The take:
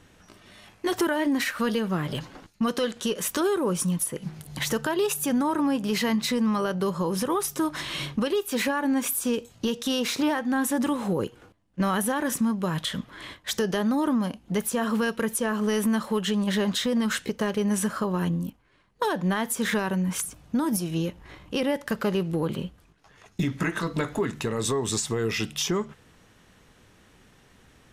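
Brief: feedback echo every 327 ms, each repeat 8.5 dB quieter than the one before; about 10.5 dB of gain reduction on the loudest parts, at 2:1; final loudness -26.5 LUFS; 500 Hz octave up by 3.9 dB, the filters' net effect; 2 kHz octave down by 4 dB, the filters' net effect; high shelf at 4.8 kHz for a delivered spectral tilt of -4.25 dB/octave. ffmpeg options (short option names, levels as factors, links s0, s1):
-af "equalizer=f=500:t=o:g=5,equalizer=f=2000:t=o:g=-6.5,highshelf=f=4800:g=6,acompressor=threshold=0.0126:ratio=2,aecho=1:1:327|654|981|1308:0.376|0.143|0.0543|0.0206,volume=2.24"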